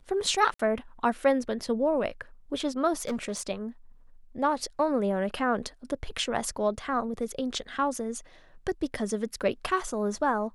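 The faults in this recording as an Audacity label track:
0.540000	0.590000	gap 54 ms
2.980000	3.420000	clipped -26.5 dBFS

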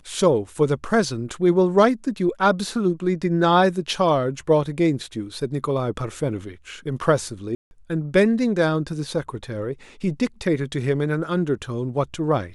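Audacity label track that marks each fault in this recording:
7.550000	7.710000	gap 0.161 s

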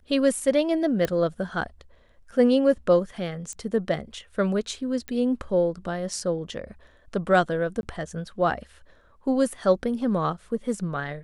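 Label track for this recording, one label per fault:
1.050000	1.050000	pop -12 dBFS
3.530000	3.530000	pop -25 dBFS
5.080000	5.080000	pop -19 dBFS
7.810000	7.830000	gap 21 ms

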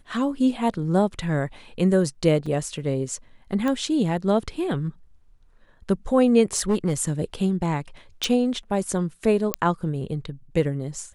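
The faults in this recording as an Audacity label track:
2.460000	2.460000	gap 4.2 ms
3.680000	3.680000	pop -14 dBFS
6.560000	7.000000	clipped -16 dBFS
8.240000	8.240000	pop
9.540000	9.540000	pop -4 dBFS

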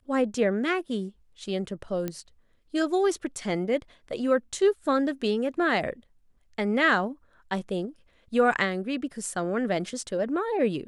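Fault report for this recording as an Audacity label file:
2.080000	2.080000	pop -17 dBFS

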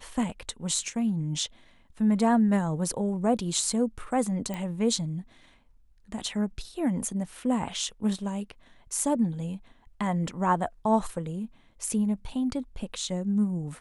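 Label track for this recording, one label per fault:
4.540000	4.540000	pop -20 dBFS

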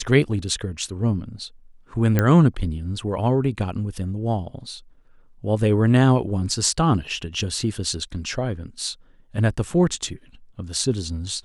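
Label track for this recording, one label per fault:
2.190000	2.190000	pop -6 dBFS

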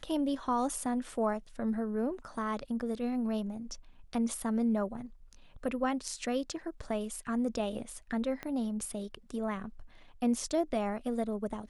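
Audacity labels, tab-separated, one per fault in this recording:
8.430000	8.430000	pop -24 dBFS

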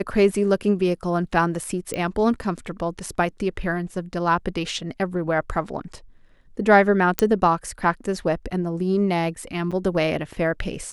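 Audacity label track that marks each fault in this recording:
1.940000	1.940000	pop -14 dBFS
7.190000	7.190000	pop -2 dBFS
9.710000	9.720000	gap 6.4 ms

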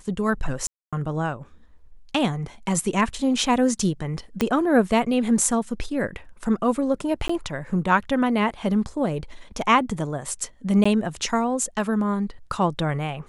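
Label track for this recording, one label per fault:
0.670000	0.930000	gap 0.256 s
4.410000	4.410000	pop -7 dBFS
7.280000	7.290000	gap 14 ms
10.840000	10.860000	gap 15 ms

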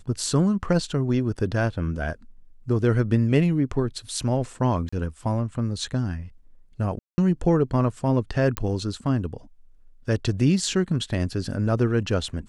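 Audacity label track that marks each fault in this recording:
4.890000	4.920000	gap 35 ms
6.990000	7.180000	gap 0.19 s
8.570000	8.570000	pop -9 dBFS

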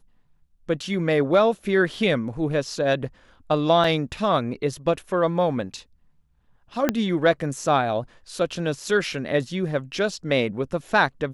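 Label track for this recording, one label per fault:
3.840000	3.840000	gap 2.8 ms
6.890000	6.890000	pop -6 dBFS

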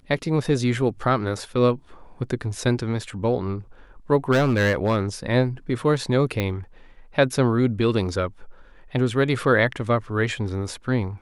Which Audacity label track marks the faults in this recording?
4.310000	5.010000	clipped -15 dBFS
6.400000	6.400000	pop -10 dBFS

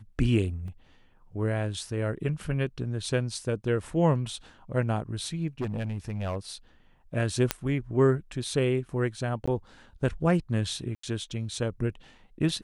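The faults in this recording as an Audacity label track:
0.680000	0.680000	gap 2.5 ms
5.610000	6.360000	clipped -26.5 dBFS
7.510000	7.510000	pop -7 dBFS
9.460000	9.470000	gap 15 ms
10.950000	11.030000	gap 84 ms

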